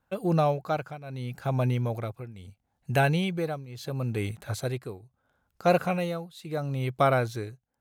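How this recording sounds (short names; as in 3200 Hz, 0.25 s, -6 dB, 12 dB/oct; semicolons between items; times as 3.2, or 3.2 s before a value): tremolo triangle 0.75 Hz, depth 90%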